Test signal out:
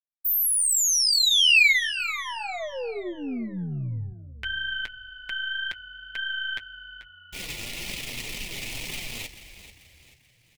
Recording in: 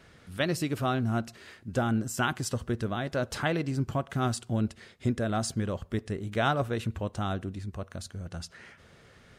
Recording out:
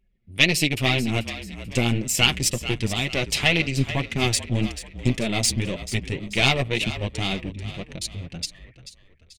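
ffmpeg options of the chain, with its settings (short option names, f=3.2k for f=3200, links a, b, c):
-filter_complex "[0:a]anlmdn=0.251,bandreject=f=1.6k:w=9.7,aeval=exprs='0.2*(cos(1*acos(clip(val(0)/0.2,-1,1)))-cos(1*PI/2))+0.0316*(cos(4*acos(clip(val(0)/0.2,-1,1)))-cos(4*PI/2))':c=same,flanger=delay=4.5:depth=4.6:regen=-15:speed=1.9:shape=triangular,highshelf=f=1.8k:t=q:w=3:g=9.5,asplit=2[a][b];[b]asplit=4[c][d][e][f];[c]adelay=437,afreqshift=-44,volume=-13dB[g];[d]adelay=874,afreqshift=-88,volume=-20.5dB[h];[e]adelay=1311,afreqshift=-132,volume=-28.1dB[i];[f]adelay=1748,afreqshift=-176,volume=-35.6dB[j];[g][h][i][j]amix=inputs=4:normalize=0[k];[a][k]amix=inputs=2:normalize=0,volume=6.5dB"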